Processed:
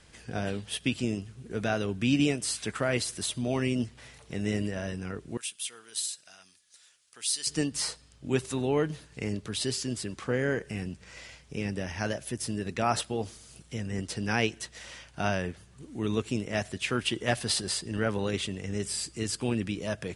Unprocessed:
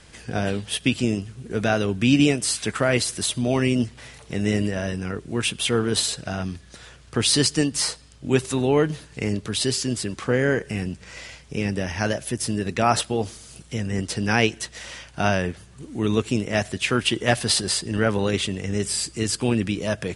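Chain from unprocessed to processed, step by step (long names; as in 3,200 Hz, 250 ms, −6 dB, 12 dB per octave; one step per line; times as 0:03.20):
0:05.37–0:07.47: first difference
level −7.5 dB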